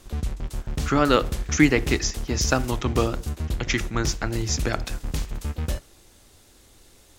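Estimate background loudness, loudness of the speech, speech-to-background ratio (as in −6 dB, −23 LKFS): −31.5 LKFS, −24.5 LKFS, 7.0 dB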